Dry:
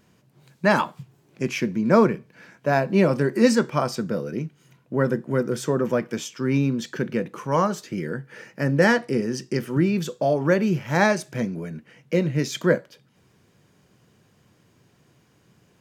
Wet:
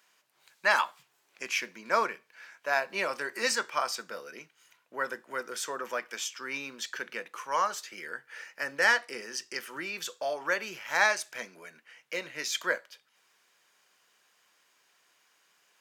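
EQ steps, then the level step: high-pass 1.1 kHz 12 dB/octave; 0.0 dB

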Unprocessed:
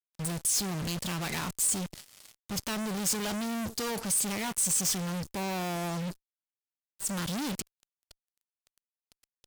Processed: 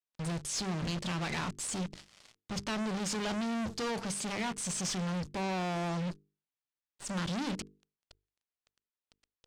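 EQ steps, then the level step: distance through air 96 m; hum notches 50/100/150/200/250/300/350/400/450 Hz; 0.0 dB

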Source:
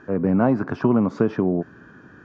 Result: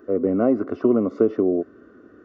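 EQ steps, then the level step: Savitzky-Golay filter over 65 samples; tilt EQ +3 dB/octave; static phaser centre 370 Hz, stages 4; +8.0 dB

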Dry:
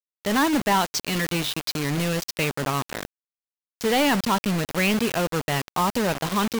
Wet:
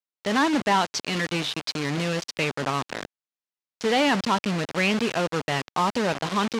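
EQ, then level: high-pass 160 Hz 6 dB/octave; low-pass 6.1 kHz 12 dB/octave; 0.0 dB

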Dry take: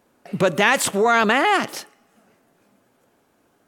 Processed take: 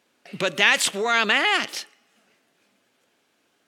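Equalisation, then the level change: frequency weighting D; -7.0 dB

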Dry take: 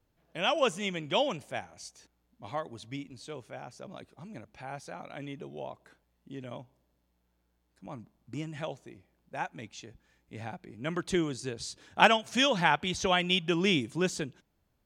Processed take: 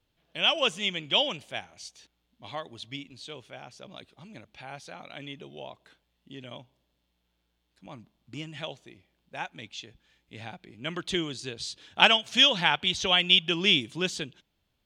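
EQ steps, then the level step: peaking EQ 3.3 kHz +12.5 dB 1.1 oct; -2.5 dB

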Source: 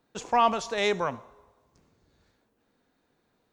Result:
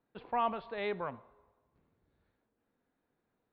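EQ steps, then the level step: elliptic low-pass 4.3 kHz, stop band 40 dB; distance through air 320 m; -7.5 dB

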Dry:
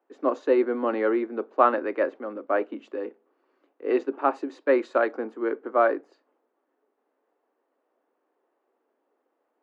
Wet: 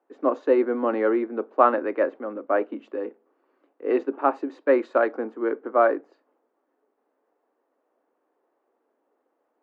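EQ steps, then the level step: peaking EQ 380 Hz -2 dB 0.21 oct; treble shelf 3.5 kHz -12 dB; +2.5 dB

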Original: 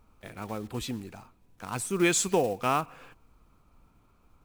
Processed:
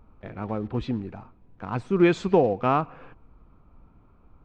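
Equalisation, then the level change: dynamic bell 4.4 kHz, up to +4 dB, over -48 dBFS, Q 1.9; tape spacing loss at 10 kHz 44 dB; +8.0 dB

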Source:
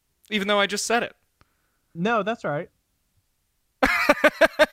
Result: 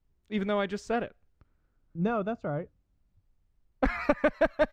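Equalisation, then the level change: tilt EQ -4.5 dB/octave; bass shelf 220 Hz -7 dB; peaking EQ 11 kHz -11.5 dB 0.28 oct; -9.0 dB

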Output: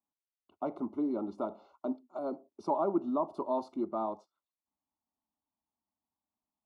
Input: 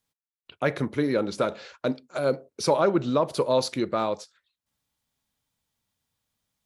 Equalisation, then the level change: Savitzky-Golay filter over 65 samples; high-pass 190 Hz 6 dB/octave; static phaser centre 490 Hz, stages 6; -3.5 dB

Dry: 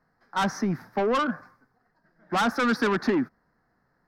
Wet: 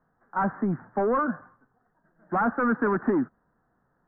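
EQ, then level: steep low-pass 1.6 kHz 36 dB/octave; 0.0 dB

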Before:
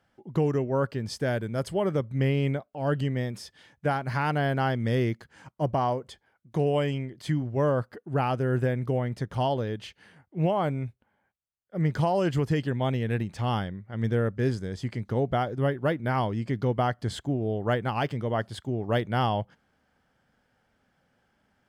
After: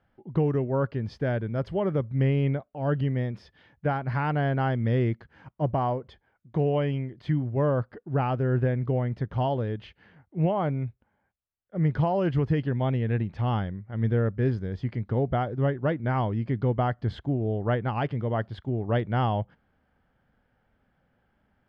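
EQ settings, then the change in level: distance through air 290 m; bass shelf 71 Hz +10.5 dB; 0.0 dB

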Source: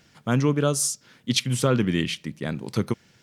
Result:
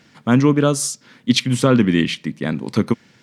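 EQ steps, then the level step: ten-band graphic EQ 125 Hz +5 dB, 250 Hz +12 dB, 500 Hz +5 dB, 1 kHz +8 dB, 2 kHz +8 dB, 4 kHz +6 dB, 8 kHz +4 dB; -3.5 dB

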